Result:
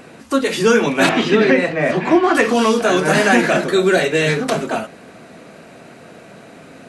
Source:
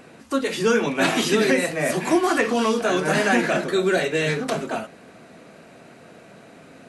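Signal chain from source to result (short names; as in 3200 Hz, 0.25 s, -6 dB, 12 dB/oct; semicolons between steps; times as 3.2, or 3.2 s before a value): 1.09–2.35 LPF 3000 Hz 12 dB/oct; gain +6 dB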